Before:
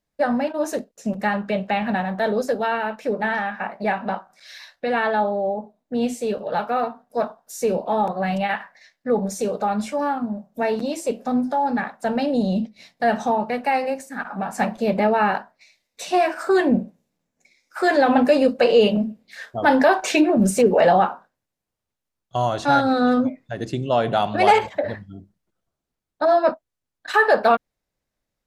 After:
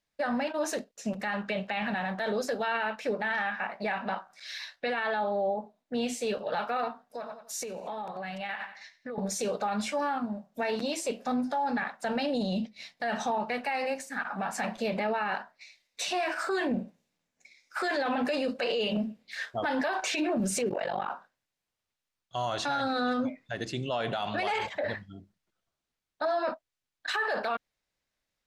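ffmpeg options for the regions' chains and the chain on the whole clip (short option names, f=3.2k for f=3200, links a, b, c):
-filter_complex "[0:a]asettb=1/sr,asplit=3[a][b][c];[a]atrim=end=7.044[d];[b]atrim=start=7.04:end=9.18,asetpts=PTS-STARTPTS,afade=t=in:d=0.004:c=qsin,afade=t=out:st=2.136:d=0.004:c=qsin,aecho=1:1:91|182|273:0.15|0.0554|0.0205,atrim=end_sample=94374,acompressor=threshold=-29dB:ratio=10:attack=3.2:release=140:knee=1:detection=peak[e];[c]atrim=start=9.176[f];[d][e]acrossfade=d=0.004:c1=hsin:c2=qsin[g];[g][f]acrossfade=d=0.004:c1=qsin:c2=hsin,asettb=1/sr,asplit=3[h][i][j];[h]atrim=end=20.694[k];[i]atrim=start=20.69:end=21.1,asetpts=PTS-STARTPTS,afade=t=in:d=0.004:c=qsin,afade=t=out:st=0.406:d=0.004:c=qsin,acompressor=threshold=-17dB:ratio=6:attack=3.2:release=140:knee=1:detection=peak,tremolo=f=48:d=0.974[l];[j]atrim=start=21.096[m];[k][l]acrossfade=d=0.004:c1=hsin:c2=qsin[n];[n][m]acrossfade=d=0.004:c1=qsin:c2=hsin,equalizer=f=3.1k:w=0.33:g=10.5,alimiter=limit=-14dB:level=0:latency=1:release=36,volume=-8dB"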